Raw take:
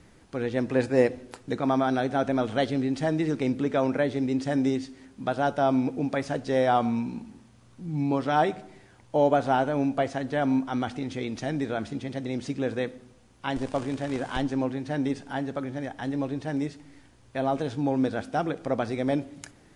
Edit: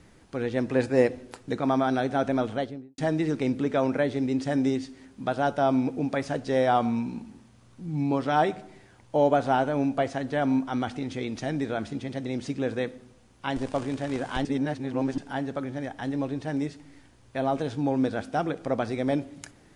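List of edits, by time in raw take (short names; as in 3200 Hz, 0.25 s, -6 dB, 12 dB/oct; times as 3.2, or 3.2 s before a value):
2.35–2.98 studio fade out
14.45–15.18 reverse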